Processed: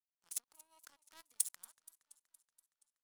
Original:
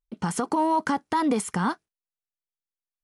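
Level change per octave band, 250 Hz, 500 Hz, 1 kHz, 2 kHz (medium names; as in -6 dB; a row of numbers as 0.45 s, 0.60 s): under -40 dB, under -40 dB, under -40 dB, -30.5 dB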